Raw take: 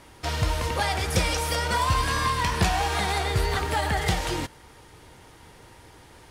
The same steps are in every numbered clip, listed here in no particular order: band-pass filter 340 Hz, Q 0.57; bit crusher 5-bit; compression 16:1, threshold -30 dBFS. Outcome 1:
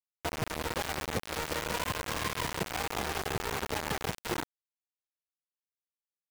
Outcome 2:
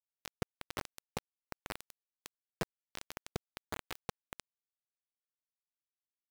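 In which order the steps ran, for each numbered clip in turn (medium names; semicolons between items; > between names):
band-pass filter > compression > bit crusher; compression > band-pass filter > bit crusher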